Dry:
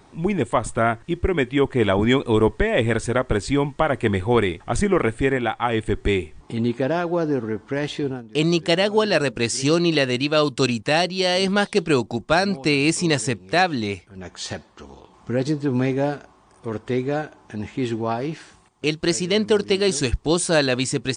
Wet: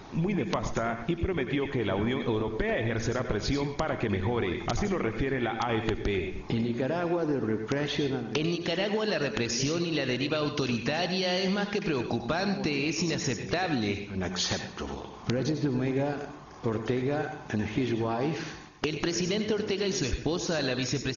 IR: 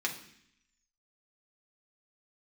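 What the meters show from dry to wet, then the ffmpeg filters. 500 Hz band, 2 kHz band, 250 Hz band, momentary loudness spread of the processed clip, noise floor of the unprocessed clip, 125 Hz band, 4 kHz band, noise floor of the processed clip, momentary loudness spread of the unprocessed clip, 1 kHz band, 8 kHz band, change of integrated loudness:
-8.5 dB, -8.0 dB, -7.0 dB, 4 LU, -53 dBFS, -6.0 dB, -7.0 dB, -43 dBFS, 9 LU, -9.0 dB, -7.5 dB, -8.0 dB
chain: -filter_complex "[0:a]alimiter=limit=-15.5dB:level=0:latency=1:release=101,acompressor=threshold=-31dB:ratio=10,acrusher=bits=10:mix=0:aa=0.000001,asplit=2[a][b];[b]adelay=127,lowpass=f=4.8k:p=1,volume=-14dB,asplit=2[c][d];[d]adelay=127,lowpass=f=4.8k:p=1,volume=0.29,asplit=2[e][f];[f]adelay=127,lowpass=f=4.8k:p=1,volume=0.29[g];[a][c][e][g]amix=inputs=4:normalize=0,asplit=2[h][i];[1:a]atrim=start_sample=2205,adelay=92[j];[i][j]afir=irnorm=-1:irlink=0,volume=-12.5dB[k];[h][k]amix=inputs=2:normalize=0,aeval=exprs='(mod(11.9*val(0)+1,2)-1)/11.9':c=same,volume=5.5dB" -ar 48000 -c:a ac3 -b:a 32k

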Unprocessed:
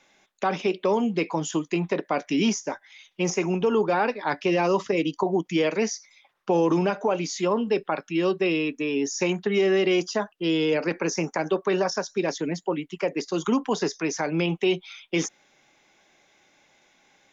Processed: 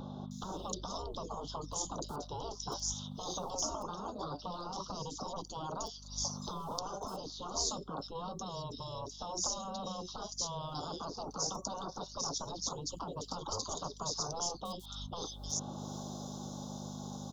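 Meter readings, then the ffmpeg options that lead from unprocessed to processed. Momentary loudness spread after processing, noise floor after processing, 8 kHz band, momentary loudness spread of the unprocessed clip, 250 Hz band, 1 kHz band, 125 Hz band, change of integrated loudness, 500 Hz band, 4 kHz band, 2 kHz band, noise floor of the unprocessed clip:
7 LU, -50 dBFS, n/a, 7 LU, -19.5 dB, -10.0 dB, -11.0 dB, -14.0 dB, -19.5 dB, -6.0 dB, -31.0 dB, -64 dBFS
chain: -filter_complex "[0:a]acrossover=split=110|710[a][b][c];[a]acrusher=bits=6:mix=0:aa=0.000001[d];[b]asoftclip=type=tanh:threshold=-24.5dB[e];[d][e][c]amix=inputs=3:normalize=0,dynaudnorm=f=520:g=13:m=11.5dB,tremolo=f=170:d=0.4,aeval=exprs='val(0)+0.00282*(sin(2*PI*50*n/s)+sin(2*PI*2*50*n/s)/2+sin(2*PI*3*50*n/s)/3+sin(2*PI*4*50*n/s)/4+sin(2*PI*5*50*n/s)/5)':c=same,acompressor=threshold=-43dB:ratio=10,afftfilt=real='re*lt(hypot(re,im),0.0141)':imag='im*lt(hypot(re,im),0.0141)':win_size=1024:overlap=0.75,asuperstop=centerf=2100:order=8:qfactor=0.86,acrossover=split=3500[f][g];[g]adelay=310[h];[f][h]amix=inputs=2:normalize=0,volume=17dB"

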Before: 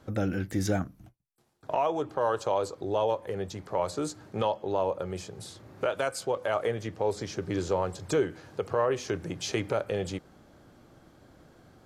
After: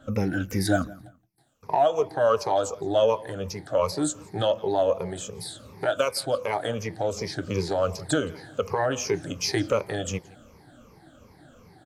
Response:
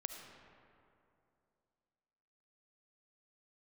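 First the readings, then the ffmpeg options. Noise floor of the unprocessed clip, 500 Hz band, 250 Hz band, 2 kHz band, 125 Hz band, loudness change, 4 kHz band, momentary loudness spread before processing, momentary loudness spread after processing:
-58 dBFS, +4.0 dB, +4.0 dB, +5.0 dB, +3.5 dB, +4.0 dB, +7.5 dB, 8 LU, 11 LU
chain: -filter_complex "[0:a]afftfilt=real='re*pow(10,17/40*sin(2*PI*(0.83*log(max(b,1)*sr/1024/100)/log(2)-(-2.7)*(pts-256)/sr)))':imag='im*pow(10,17/40*sin(2*PI*(0.83*log(max(b,1)*sr/1024/100)/log(2)-(-2.7)*(pts-256)/sr)))':win_size=1024:overlap=0.75,bandreject=f=360:w=12,bandreject=f=330:t=h:w=4,bandreject=f=660:t=h:w=4,bandreject=f=990:t=h:w=4,aeval=exprs='0.299*(cos(1*acos(clip(val(0)/0.299,-1,1)))-cos(1*PI/2))+0.00237*(cos(7*acos(clip(val(0)/0.299,-1,1)))-cos(7*PI/2))':c=same,asplit=2[a][b];[b]adelay=170,lowpass=f=4.7k:p=1,volume=-21.5dB,asplit=2[c][d];[d]adelay=170,lowpass=f=4.7k:p=1,volume=0.3[e];[c][e]amix=inputs=2:normalize=0[f];[a][f]amix=inputs=2:normalize=0,adynamicequalizer=threshold=0.00562:dfrequency=4200:dqfactor=0.7:tfrequency=4200:tqfactor=0.7:attack=5:release=100:ratio=0.375:range=2:mode=boostabove:tftype=highshelf,volume=1.5dB"

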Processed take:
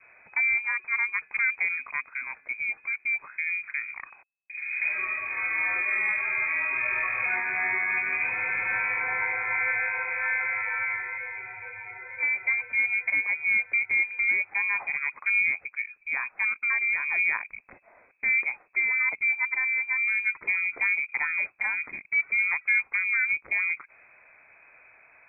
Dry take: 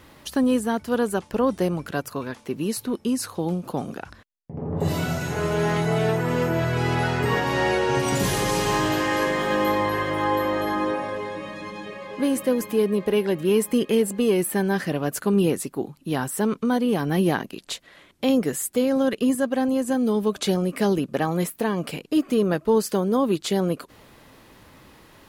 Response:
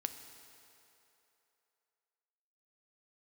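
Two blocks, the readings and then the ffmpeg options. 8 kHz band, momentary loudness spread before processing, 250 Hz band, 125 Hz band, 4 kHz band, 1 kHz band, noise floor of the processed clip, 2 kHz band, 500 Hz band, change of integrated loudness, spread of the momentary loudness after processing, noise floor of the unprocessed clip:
under -40 dB, 10 LU, under -30 dB, under -30 dB, under -40 dB, -10.5 dB, -60 dBFS, +9.0 dB, -26.5 dB, -1.5 dB, 9 LU, -52 dBFS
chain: -af "lowpass=f=2.2k:t=q:w=0.5098,lowpass=f=2.2k:t=q:w=0.6013,lowpass=f=2.2k:t=q:w=0.9,lowpass=f=2.2k:t=q:w=2.563,afreqshift=-2600,adynamicequalizer=threshold=0.00708:dfrequency=660:dqfactor=1.7:tfrequency=660:tqfactor=1.7:attack=5:release=100:ratio=0.375:range=2.5:mode=cutabove:tftype=bell,volume=-4.5dB"

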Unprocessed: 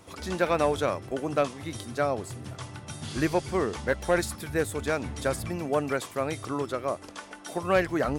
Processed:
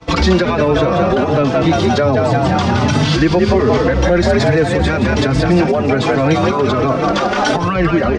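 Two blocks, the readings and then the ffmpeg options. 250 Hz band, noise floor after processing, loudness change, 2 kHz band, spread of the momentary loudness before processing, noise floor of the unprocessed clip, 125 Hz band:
+18.0 dB, -17 dBFS, +15.0 dB, +13.5 dB, 13 LU, -46 dBFS, +20.0 dB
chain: -filter_complex "[0:a]lowshelf=f=160:g=7,asplit=8[a][b][c][d][e][f][g][h];[b]adelay=172,afreqshift=57,volume=-7dB[i];[c]adelay=344,afreqshift=114,volume=-12.2dB[j];[d]adelay=516,afreqshift=171,volume=-17.4dB[k];[e]adelay=688,afreqshift=228,volume=-22.6dB[l];[f]adelay=860,afreqshift=285,volume=-27.8dB[m];[g]adelay=1032,afreqshift=342,volume=-33dB[n];[h]adelay=1204,afreqshift=399,volume=-38.2dB[o];[a][i][j][k][l][m][n][o]amix=inputs=8:normalize=0,acompressor=threshold=-33dB:ratio=6,lowpass=f=5.3k:w=0.5412,lowpass=f=5.3k:w=1.3066,agate=range=-33dB:threshold=-41dB:ratio=3:detection=peak,acrossover=split=170|340[p][q][r];[p]acompressor=threshold=-44dB:ratio=4[s];[q]acompressor=threshold=-42dB:ratio=4[t];[r]acompressor=threshold=-40dB:ratio=4[u];[s][t][u]amix=inputs=3:normalize=0,alimiter=level_in=35dB:limit=-1dB:release=50:level=0:latency=1,asplit=2[v][w];[w]adelay=4.1,afreqshift=1.3[x];[v][x]amix=inputs=2:normalize=1,volume=-1.5dB"

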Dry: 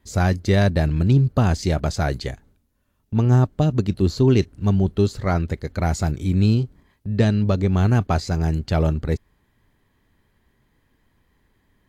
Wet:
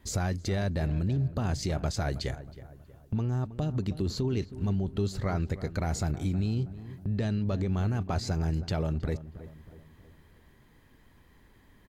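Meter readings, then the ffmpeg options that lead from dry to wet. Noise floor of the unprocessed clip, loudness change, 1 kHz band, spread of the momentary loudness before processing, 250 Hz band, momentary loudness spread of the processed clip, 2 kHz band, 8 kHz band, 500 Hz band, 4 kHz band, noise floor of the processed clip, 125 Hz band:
-67 dBFS, -10.5 dB, -11.0 dB, 8 LU, -10.5 dB, 8 LU, -10.5 dB, -4.0 dB, -11.0 dB, -7.0 dB, -59 dBFS, -10.0 dB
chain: -filter_complex "[0:a]alimiter=limit=-16dB:level=0:latency=1:release=27,acompressor=threshold=-40dB:ratio=2,asplit=2[a][b];[b]adelay=319,lowpass=f=1.5k:p=1,volume=-14dB,asplit=2[c][d];[d]adelay=319,lowpass=f=1.5k:p=1,volume=0.48,asplit=2[e][f];[f]adelay=319,lowpass=f=1.5k:p=1,volume=0.48,asplit=2[g][h];[h]adelay=319,lowpass=f=1.5k:p=1,volume=0.48,asplit=2[i][j];[j]adelay=319,lowpass=f=1.5k:p=1,volume=0.48[k];[a][c][e][g][i][k]amix=inputs=6:normalize=0,volume=4.5dB"

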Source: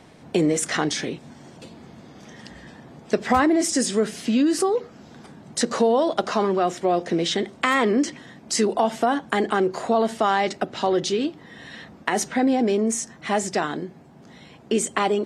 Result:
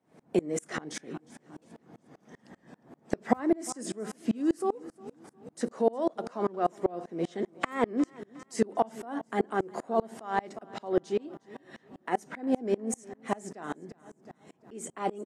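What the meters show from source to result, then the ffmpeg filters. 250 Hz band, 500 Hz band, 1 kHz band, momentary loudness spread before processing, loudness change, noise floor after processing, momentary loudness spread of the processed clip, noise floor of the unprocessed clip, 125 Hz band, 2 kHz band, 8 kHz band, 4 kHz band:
-9.0 dB, -8.5 dB, -9.5 dB, 11 LU, -9.5 dB, -68 dBFS, 19 LU, -48 dBFS, -9.5 dB, -13.0 dB, -14.5 dB, -19.0 dB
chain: -filter_complex "[0:a]highpass=150,equalizer=f=3.9k:t=o:w=1.9:g=-11,asplit=2[a][b];[b]aecho=0:1:358|716|1074|1432:0.133|0.068|0.0347|0.0177[c];[a][c]amix=inputs=2:normalize=0,aeval=exprs='val(0)*pow(10,-30*if(lt(mod(-5.1*n/s,1),2*abs(-5.1)/1000),1-mod(-5.1*n/s,1)/(2*abs(-5.1)/1000),(mod(-5.1*n/s,1)-2*abs(-5.1)/1000)/(1-2*abs(-5.1)/1000))/20)':c=same"

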